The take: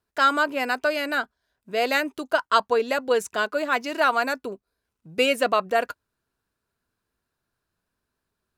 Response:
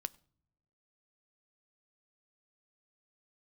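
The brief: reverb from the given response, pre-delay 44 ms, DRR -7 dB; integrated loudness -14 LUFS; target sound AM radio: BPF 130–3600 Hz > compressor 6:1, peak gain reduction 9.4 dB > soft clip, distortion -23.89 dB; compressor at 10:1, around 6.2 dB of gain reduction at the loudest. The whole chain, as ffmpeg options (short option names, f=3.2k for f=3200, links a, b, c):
-filter_complex "[0:a]acompressor=threshold=-21dB:ratio=10,asplit=2[a][b];[1:a]atrim=start_sample=2205,adelay=44[c];[b][c]afir=irnorm=-1:irlink=0,volume=9dB[d];[a][d]amix=inputs=2:normalize=0,highpass=130,lowpass=3.6k,acompressor=threshold=-20dB:ratio=6,asoftclip=threshold=-12.5dB,volume=11.5dB"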